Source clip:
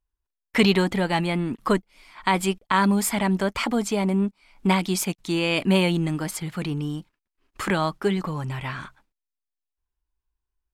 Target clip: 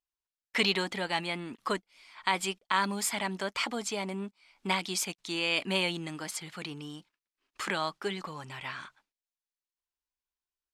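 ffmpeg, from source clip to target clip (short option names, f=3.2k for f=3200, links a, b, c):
-af "lowpass=4.9k,aemphasis=mode=production:type=riaa,volume=-7dB"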